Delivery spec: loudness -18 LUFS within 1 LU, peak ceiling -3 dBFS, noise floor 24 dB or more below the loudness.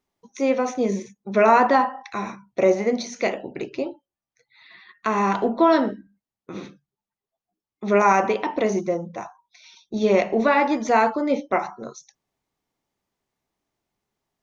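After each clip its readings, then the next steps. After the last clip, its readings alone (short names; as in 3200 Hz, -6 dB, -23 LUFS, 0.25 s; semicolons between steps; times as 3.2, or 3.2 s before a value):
loudness -21.5 LUFS; peak -5.5 dBFS; loudness target -18.0 LUFS
-> gain +3.5 dB; limiter -3 dBFS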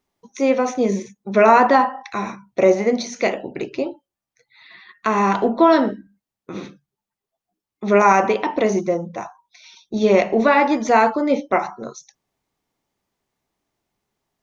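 loudness -18.0 LUFS; peak -3.0 dBFS; noise floor -88 dBFS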